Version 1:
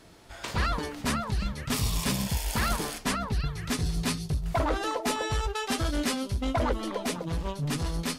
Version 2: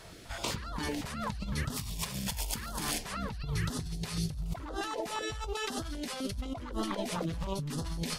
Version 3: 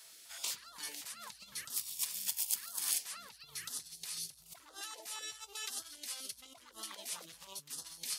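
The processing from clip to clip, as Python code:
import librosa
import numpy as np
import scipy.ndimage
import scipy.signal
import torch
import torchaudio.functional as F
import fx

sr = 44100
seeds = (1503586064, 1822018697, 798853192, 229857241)

y1 = fx.over_compress(x, sr, threshold_db=-35.0, ratio=-1.0)
y1 = fx.filter_held_notch(y1, sr, hz=7.9, low_hz=270.0, high_hz=2300.0)
y2 = np.diff(y1, prepend=0.0)
y2 = y2 * 10.0 ** (2.0 / 20.0)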